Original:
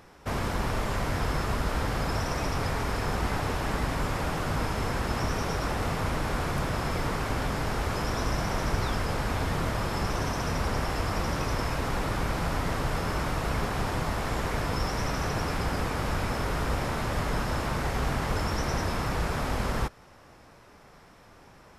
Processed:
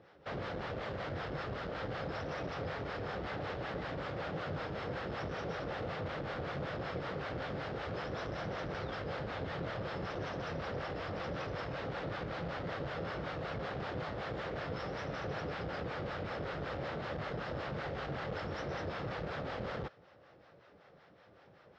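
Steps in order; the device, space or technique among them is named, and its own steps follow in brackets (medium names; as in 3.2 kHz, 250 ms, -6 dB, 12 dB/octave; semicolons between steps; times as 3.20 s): guitar amplifier with harmonic tremolo (harmonic tremolo 5.3 Hz, depth 70%, crossover 630 Hz; saturation -26 dBFS, distortion -16 dB; cabinet simulation 110–4100 Hz, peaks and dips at 240 Hz -6 dB, 530 Hz +6 dB, 990 Hz -7 dB, 2.4 kHz -4 dB); trim -3 dB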